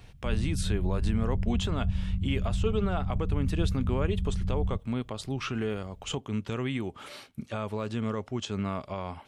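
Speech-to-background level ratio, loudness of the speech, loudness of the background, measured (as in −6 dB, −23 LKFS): −1.5 dB, −33.5 LKFS, −32.0 LKFS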